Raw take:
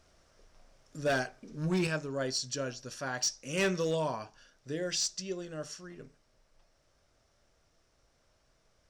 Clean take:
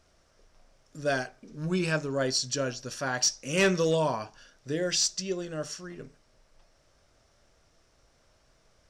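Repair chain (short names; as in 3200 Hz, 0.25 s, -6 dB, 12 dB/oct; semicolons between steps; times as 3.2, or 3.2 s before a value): clip repair -24 dBFS; gain 0 dB, from 1.87 s +5.5 dB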